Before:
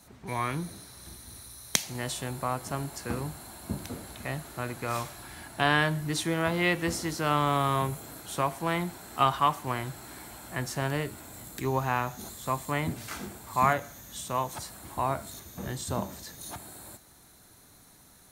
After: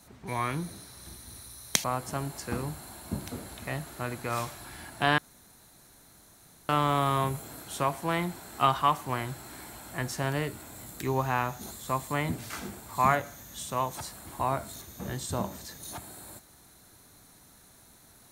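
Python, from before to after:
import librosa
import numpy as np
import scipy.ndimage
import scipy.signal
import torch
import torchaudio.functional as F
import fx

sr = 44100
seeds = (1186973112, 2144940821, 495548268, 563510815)

y = fx.edit(x, sr, fx.cut(start_s=1.84, length_s=0.58),
    fx.room_tone_fill(start_s=5.76, length_s=1.51), tone=tone)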